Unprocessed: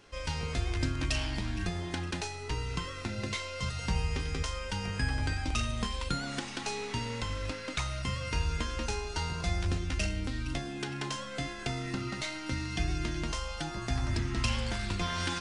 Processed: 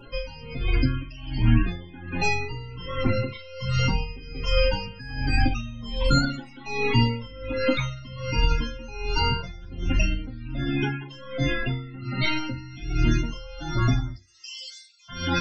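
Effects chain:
in parallel at 0 dB: compressor whose output falls as the input rises −34 dBFS, ratio −0.5
0:14.14–0:15.09: on the sum: resonant band-pass 7,000 Hz, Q 1.3
spectral peaks only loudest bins 32
convolution reverb RT60 0.25 s, pre-delay 4 ms, DRR −1.5 dB
tremolo with a sine in dB 1.3 Hz, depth 21 dB
level +4.5 dB

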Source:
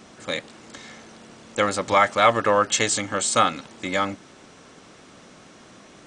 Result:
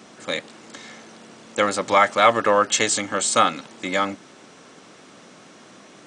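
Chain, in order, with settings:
high-pass filter 150 Hz 12 dB per octave
level +1.5 dB

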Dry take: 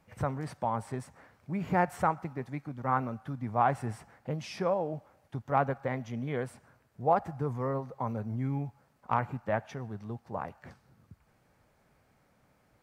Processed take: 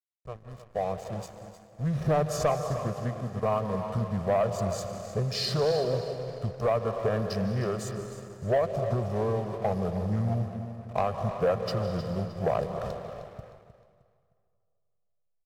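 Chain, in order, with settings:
fade in at the beginning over 2.97 s
high-shelf EQ 7,800 Hz +8.5 dB
downward compressor 6 to 1, threshold −31 dBFS, peak gain reduction 11.5 dB
graphic EQ with 15 bands 100 Hz −11 dB, 2,500 Hz −11 dB, 6,300 Hz +7 dB
slack as between gear wheels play −50 dBFS
comb filter 1.4 ms, depth 81%
dense smooth reverb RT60 2.2 s, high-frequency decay 0.75×, pre-delay 110 ms, DRR 8 dB
speech leveller within 4 dB 2 s
leveller curve on the samples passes 2
speed change −17%
repeating echo 309 ms, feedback 35%, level −13 dB
highs frequency-modulated by the lows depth 0.19 ms
level +1 dB

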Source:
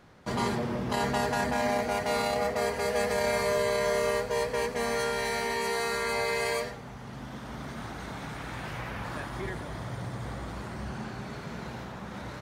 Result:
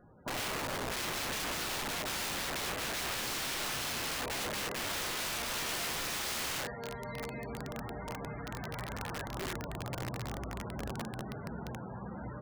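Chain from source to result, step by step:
feedback delay with all-pass diffusion 1,039 ms, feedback 64%, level −13 dB
spectral peaks only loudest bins 32
wrap-around overflow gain 29.5 dB
level −2 dB

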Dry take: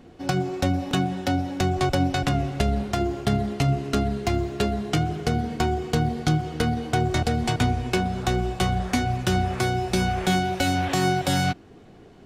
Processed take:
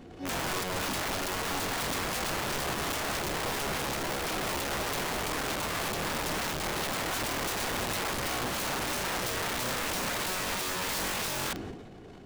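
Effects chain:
brickwall limiter −21 dBFS, peak gain reduction 10.5 dB
transient designer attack −7 dB, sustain +11 dB
wrap-around overflow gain 27.5 dB

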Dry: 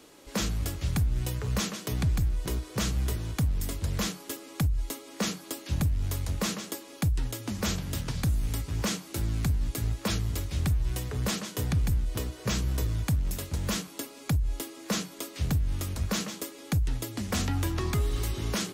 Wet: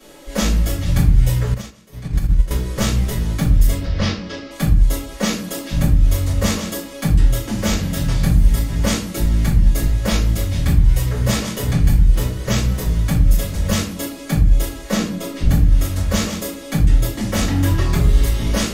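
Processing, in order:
0:03.72–0:04.51: Chebyshev low-pass filter 5,300 Hz, order 4
0:14.93–0:15.49: spectral tilt −1.5 dB per octave
soft clipping −21 dBFS, distortion −20 dB
rectangular room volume 35 cubic metres, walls mixed, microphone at 2.3 metres
0:01.54–0:02.51: expander for the loud parts 2.5 to 1, over −22 dBFS
level −1 dB

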